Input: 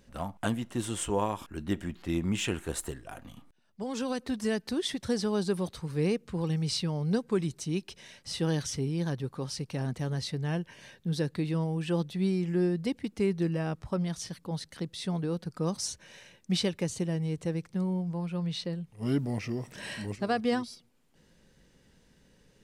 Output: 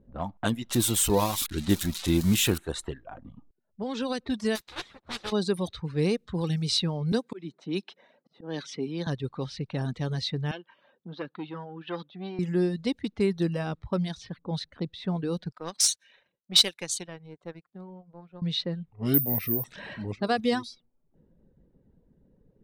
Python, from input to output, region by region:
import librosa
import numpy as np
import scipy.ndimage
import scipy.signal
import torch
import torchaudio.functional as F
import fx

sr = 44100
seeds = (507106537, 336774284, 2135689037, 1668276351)

y = fx.chain(x, sr, fx.crossing_spikes(level_db=-22.5),
    fx.low_shelf(hz=370.0, db=6.0), at=(0.69, 2.58))
y = fx.spec_flatten(y, sr, power=0.18, at=(4.55, 5.31), fade=0.02)
y = fx.level_steps(y, sr, step_db=10, at=(4.55, 5.31), fade=0.02)
y = fx.ensemble(y, sr, at=(4.55, 5.31), fade=0.02)
y = fx.chain(y, sr, fx.highpass(hz=200.0, slope=24),
    fx.auto_swell(attack_ms=207.0), at=(7.12, 9.07))
y = fx.chain(y, sr, fx.cabinet(low_hz=350.0, low_slope=12, high_hz=5600.0, hz=(430.0, 640.0, 1300.0, 2000.0, 3100.0), db=(-7, -3, 6, -5, 6)),
    fx.transformer_sat(knee_hz=860.0), at=(10.51, 12.39))
y = fx.chain(y, sr, fx.tilt_eq(slope=4.0),
    fx.overload_stage(gain_db=18.5),
    fx.power_curve(exponent=1.4), at=(15.52, 18.42))
y = fx.chain(y, sr, fx.high_shelf(hz=3900.0, db=-11.5),
    fx.resample_bad(factor=3, down='none', up='zero_stuff'), at=(19.14, 19.64))
y = fx.dereverb_blind(y, sr, rt60_s=0.63)
y = fx.env_lowpass(y, sr, base_hz=480.0, full_db=-27.5)
y = fx.peak_eq(y, sr, hz=3800.0, db=8.5, octaves=0.28)
y = y * 10.0 ** (3.0 / 20.0)